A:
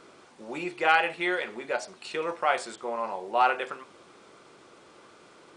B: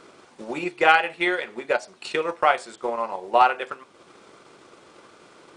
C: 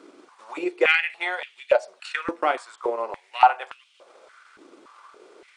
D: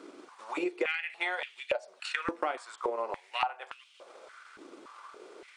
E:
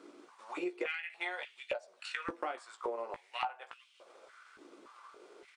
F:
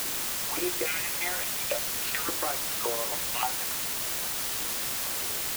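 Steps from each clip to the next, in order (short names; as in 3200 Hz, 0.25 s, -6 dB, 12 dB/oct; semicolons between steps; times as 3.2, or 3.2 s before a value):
transient shaper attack +6 dB, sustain -5 dB; gain +3 dB
stepped high-pass 3.5 Hz 290–2900 Hz; gain -5 dB
compressor 8:1, threshold -28 dBFS, peak gain reduction 18.5 dB
doubler 17 ms -8.5 dB; gain -6.5 dB
requantised 6-bit, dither triangular; gain +4.5 dB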